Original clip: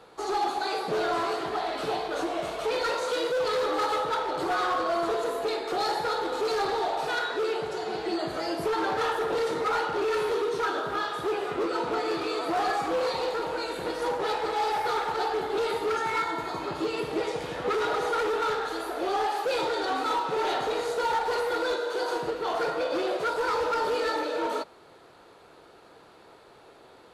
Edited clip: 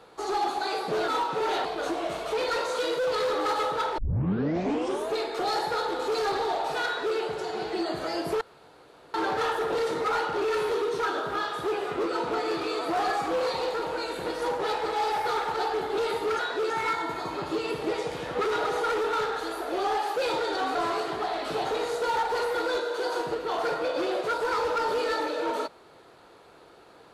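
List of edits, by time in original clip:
1.08–1.98 swap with 20.04–20.61
4.31 tape start 1.15 s
7.19–7.5 copy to 15.99
8.74 insert room tone 0.73 s

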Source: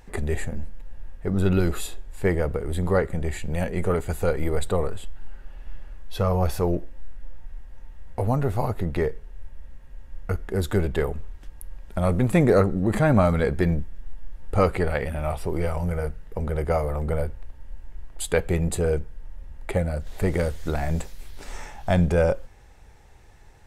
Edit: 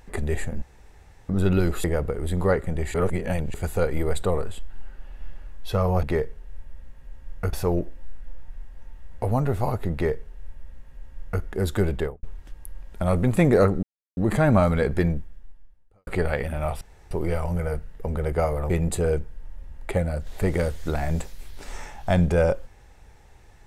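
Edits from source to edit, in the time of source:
0.62–1.29 room tone
1.84–2.3 cut
3.4–4 reverse
8.89–10.39 copy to 6.49
10.9–11.19 studio fade out
12.79 insert silence 0.34 s
13.66–14.69 fade out quadratic
15.43 insert room tone 0.30 s
17.02–18.5 cut

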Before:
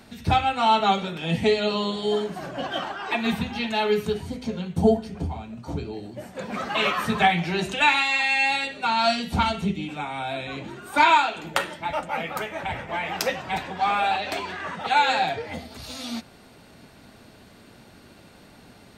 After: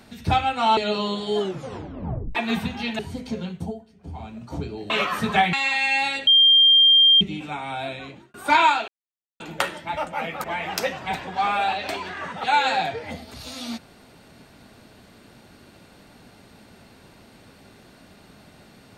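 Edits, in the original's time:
0.77–1.53 cut
2.15 tape stop 0.96 s
3.75–4.15 cut
4.65–5.42 dip -18.5 dB, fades 0.24 s
6.06–6.76 cut
7.39–8.01 cut
8.75–9.69 bleep 3190 Hz -11 dBFS
10.35–10.82 fade out
11.36 insert silence 0.52 s
12.4–12.87 cut

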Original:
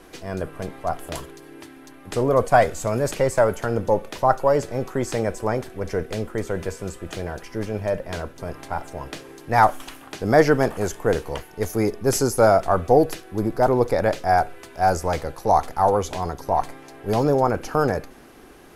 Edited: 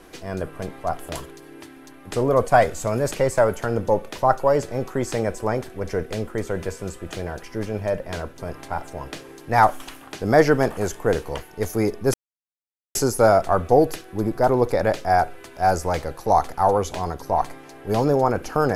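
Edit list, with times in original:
12.14 insert silence 0.81 s

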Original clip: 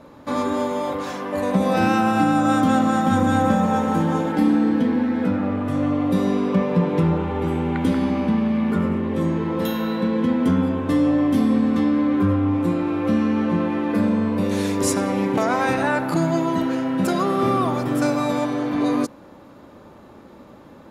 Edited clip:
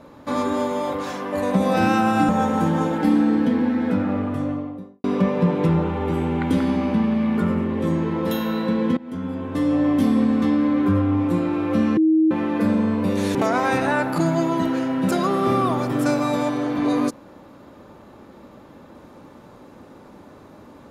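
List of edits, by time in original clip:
2.29–3.63 cut
5.46–6.38 studio fade out
10.31–11.23 fade in, from -22 dB
13.31–13.65 bleep 317 Hz -13 dBFS
14.69–15.31 cut

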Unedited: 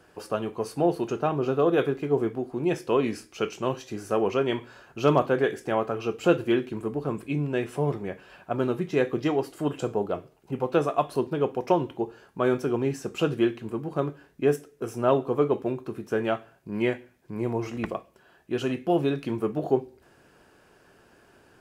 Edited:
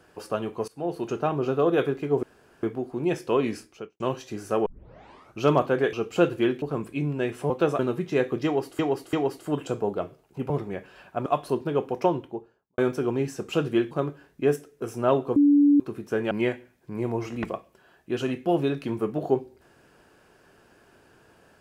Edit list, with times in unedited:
0.68–1.13 fade in, from -20 dB
2.23 insert room tone 0.40 s
3.15–3.6 studio fade out
4.26 tape start 0.75 s
5.53–6.01 cut
6.7–6.96 cut
7.84–8.6 swap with 10.63–10.92
9.26–9.6 loop, 3 plays
11.64–12.44 studio fade out
13.57–13.91 cut
15.36–15.8 bleep 288 Hz -14 dBFS
16.31–16.72 cut

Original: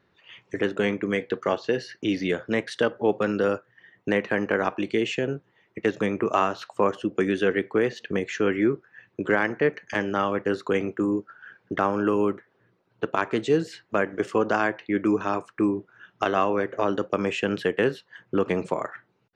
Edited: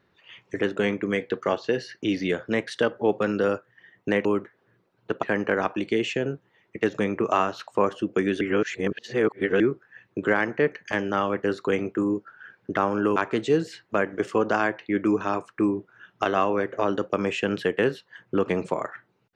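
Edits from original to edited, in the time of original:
7.43–8.62 reverse
12.18–13.16 move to 4.25

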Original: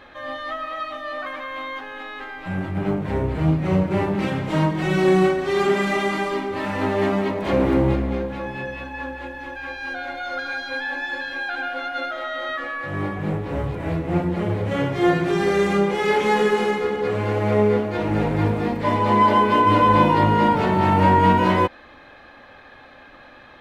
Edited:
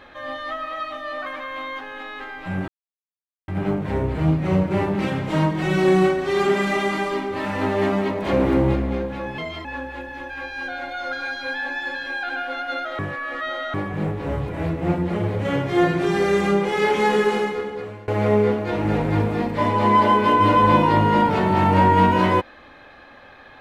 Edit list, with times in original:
2.68 insert silence 0.80 s
8.58–8.91 speed 123%
12.25–13 reverse
16.58–17.34 fade out, to -24 dB

